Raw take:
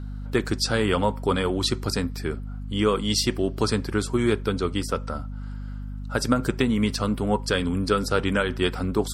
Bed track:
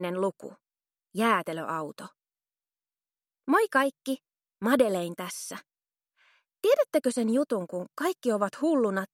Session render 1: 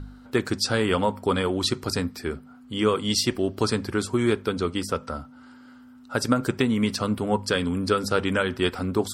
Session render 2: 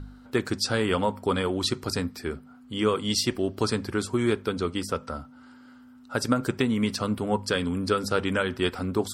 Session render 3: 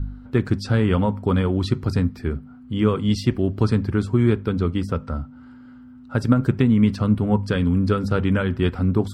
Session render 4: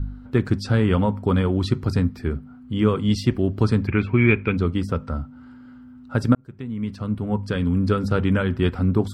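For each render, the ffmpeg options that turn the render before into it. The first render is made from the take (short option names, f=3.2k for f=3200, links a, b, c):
-af "bandreject=f=50:t=h:w=4,bandreject=f=100:t=h:w=4,bandreject=f=150:t=h:w=4,bandreject=f=200:t=h:w=4"
-af "volume=-2dB"
-af "bass=f=250:g=14,treble=f=4k:g=-12"
-filter_complex "[0:a]asettb=1/sr,asplit=3[a][b][c];[a]atrim=end=3.874[d];[b]atrim=start=3.87:end=4.57,asetpts=PTS-STARTPTS,afade=t=in:d=0.004:c=qsin,afade=t=out:st=0.696:d=0.004:c=qsin,lowpass=f=2.4k:t=q:w=11[e];[c]atrim=start=4.566[f];[d][e]acrossfade=d=0.004:c1=hsin:c2=qsin[g];[g][f]acrossfade=d=0.004:c1=qsin:c2=hsin,asplit=2[h][i];[h]atrim=end=6.35,asetpts=PTS-STARTPTS,afade=t=out:st=6.346:d=0.004:c=hsin[j];[i]atrim=start=6.35,asetpts=PTS-STARTPTS,afade=t=in:d=1.63[k];[j][k]concat=n=2:v=0:a=1"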